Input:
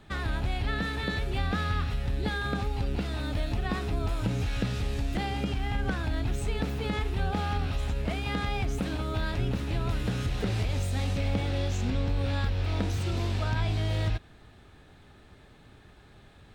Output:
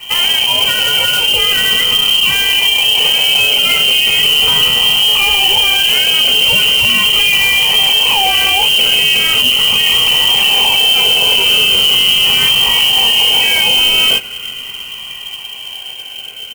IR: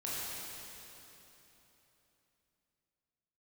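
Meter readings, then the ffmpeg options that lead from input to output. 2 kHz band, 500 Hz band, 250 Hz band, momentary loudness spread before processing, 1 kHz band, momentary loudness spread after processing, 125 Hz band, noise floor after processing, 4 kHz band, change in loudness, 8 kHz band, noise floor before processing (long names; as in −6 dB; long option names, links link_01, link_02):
+24.0 dB, +10.0 dB, +1.0 dB, 3 LU, +15.0 dB, 16 LU, −5.5 dB, −28 dBFS, +35.5 dB, +22.5 dB, +28.5 dB, −54 dBFS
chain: -filter_complex "[0:a]afftfilt=real='re*pow(10,8/40*sin(2*PI*(1.4*log(max(b,1)*sr/1024/100)/log(2)-(0.39)*(pts-256)/sr)))':imag='im*pow(10,8/40*sin(2*PI*(1.4*log(max(b,1)*sr/1024/100)/log(2)-(0.39)*(pts-256)/sr)))':win_size=1024:overlap=0.75,acrossover=split=230[link_01][link_02];[link_01]acompressor=threshold=-35dB:ratio=6[link_03];[link_02]asplit=2[link_04][link_05];[link_05]adelay=21,volume=-6dB[link_06];[link_04][link_06]amix=inputs=2:normalize=0[link_07];[link_03][link_07]amix=inputs=2:normalize=0,lowpass=frequency=2700:width_type=q:width=0.5098,lowpass=frequency=2700:width_type=q:width=0.6013,lowpass=frequency=2700:width_type=q:width=0.9,lowpass=frequency=2700:width_type=q:width=2.563,afreqshift=-3200,superequalizer=6b=0.316:8b=0.447,acrusher=bits=3:mode=log:mix=0:aa=0.000001,bandreject=frequency=1700:width=7,dynaudnorm=framelen=780:gausssize=9:maxgain=9dB,equalizer=frequency=1500:width_type=o:width=1.4:gain=-14.5,alimiter=level_in=29.5dB:limit=-1dB:release=50:level=0:latency=1,volume=-1dB"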